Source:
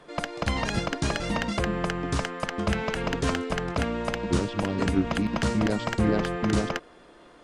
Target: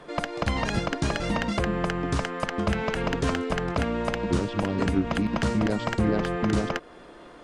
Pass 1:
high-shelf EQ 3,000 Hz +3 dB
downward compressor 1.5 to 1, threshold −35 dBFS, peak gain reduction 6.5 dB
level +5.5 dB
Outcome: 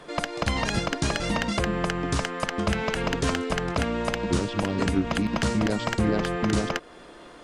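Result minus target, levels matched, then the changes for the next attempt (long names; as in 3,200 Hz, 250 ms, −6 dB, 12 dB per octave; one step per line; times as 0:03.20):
8,000 Hz band +5.5 dB
change: high-shelf EQ 3,000 Hz −4 dB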